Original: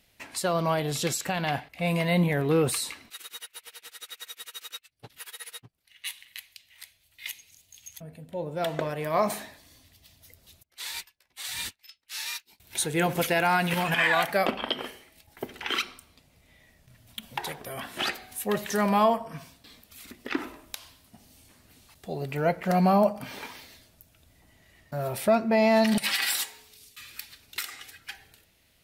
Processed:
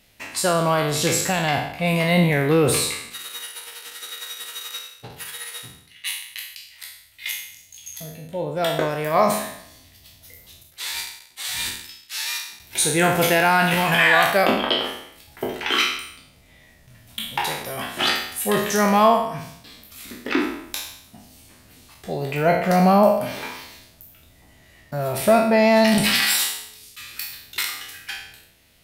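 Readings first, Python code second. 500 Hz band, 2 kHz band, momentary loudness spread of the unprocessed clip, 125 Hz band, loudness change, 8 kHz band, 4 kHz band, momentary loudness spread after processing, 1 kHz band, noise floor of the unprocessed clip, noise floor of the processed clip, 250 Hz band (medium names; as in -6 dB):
+6.5 dB, +8.0 dB, 21 LU, +6.0 dB, +6.5 dB, +9.0 dB, +8.5 dB, 19 LU, +7.0 dB, -66 dBFS, -53 dBFS, +6.0 dB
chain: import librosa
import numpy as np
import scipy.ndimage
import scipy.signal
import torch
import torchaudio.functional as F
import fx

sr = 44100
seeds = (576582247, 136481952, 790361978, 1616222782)

y = fx.spec_trails(x, sr, decay_s=0.72)
y = y * librosa.db_to_amplitude(5.0)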